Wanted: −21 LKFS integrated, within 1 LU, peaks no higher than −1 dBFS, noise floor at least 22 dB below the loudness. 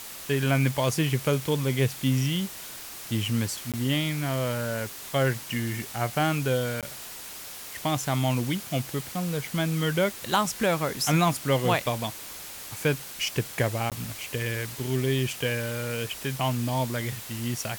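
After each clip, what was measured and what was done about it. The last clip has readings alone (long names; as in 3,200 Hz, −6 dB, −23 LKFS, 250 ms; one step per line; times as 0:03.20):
number of dropouts 3; longest dropout 17 ms; background noise floor −41 dBFS; target noise floor −50 dBFS; integrated loudness −27.5 LKFS; sample peak −10.0 dBFS; target loudness −21.0 LKFS
→ repair the gap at 0:03.72/0:06.81/0:13.90, 17 ms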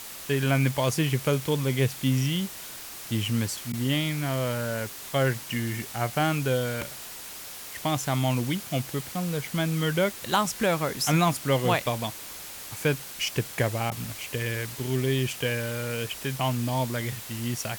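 number of dropouts 0; background noise floor −41 dBFS; target noise floor −50 dBFS
→ broadband denoise 9 dB, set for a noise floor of −41 dBFS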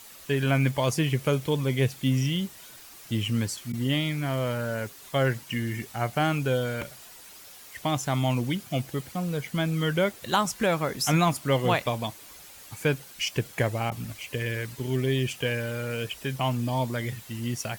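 background noise floor −48 dBFS; target noise floor −50 dBFS
→ broadband denoise 6 dB, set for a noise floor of −48 dBFS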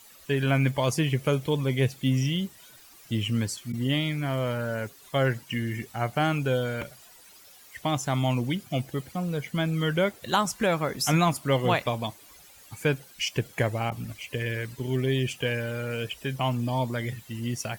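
background noise floor −52 dBFS; integrated loudness −28.0 LKFS; sample peak −10.5 dBFS; target loudness −21.0 LKFS
→ level +7 dB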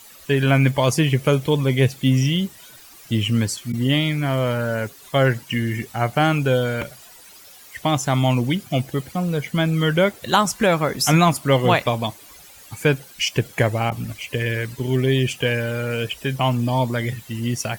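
integrated loudness −21.0 LKFS; sample peak −3.5 dBFS; background noise floor −45 dBFS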